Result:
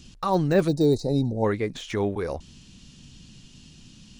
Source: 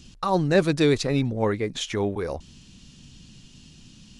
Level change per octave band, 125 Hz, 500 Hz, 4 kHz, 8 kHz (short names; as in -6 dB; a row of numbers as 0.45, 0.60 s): 0.0, -0.5, -6.5, -6.5 dB